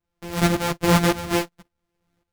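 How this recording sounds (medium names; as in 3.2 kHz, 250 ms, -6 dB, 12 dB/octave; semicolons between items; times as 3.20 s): a buzz of ramps at a fixed pitch in blocks of 256 samples; tremolo saw up 1.8 Hz, depth 75%; a shimmering, thickened sound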